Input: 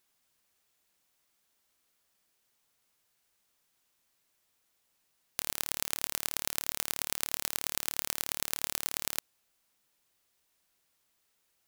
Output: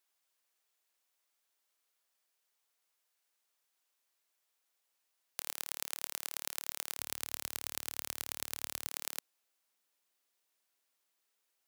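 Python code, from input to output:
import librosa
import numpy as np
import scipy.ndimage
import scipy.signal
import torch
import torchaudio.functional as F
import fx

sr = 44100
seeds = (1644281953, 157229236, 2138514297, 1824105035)

y = fx.highpass(x, sr, hz=fx.steps((0.0, 430.0), (6.98, 68.0), (8.87, 300.0)), slope=12)
y = y * 10.0 ** (-6.0 / 20.0)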